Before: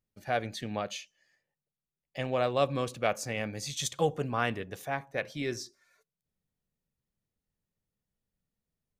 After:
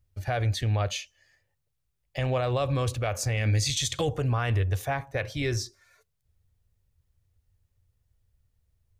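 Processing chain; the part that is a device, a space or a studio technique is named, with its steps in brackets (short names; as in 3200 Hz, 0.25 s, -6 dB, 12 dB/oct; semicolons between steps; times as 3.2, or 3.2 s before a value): 3.37–4.09 graphic EQ 250/1000/2000/4000/8000 Hz +7/-5/+6/+5/+4 dB; car stereo with a boomy subwoofer (resonant low shelf 130 Hz +12 dB, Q 3; limiter -24.5 dBFS, peak gain reduction 11 dB); gain +6.5 dB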